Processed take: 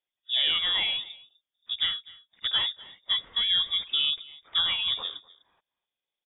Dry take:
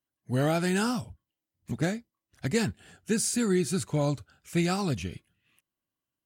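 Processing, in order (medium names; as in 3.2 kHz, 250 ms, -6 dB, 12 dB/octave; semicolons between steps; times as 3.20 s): on a send: delay 251 ms -21.5 dB; on the sum: frequency inversion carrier 3.6 kHz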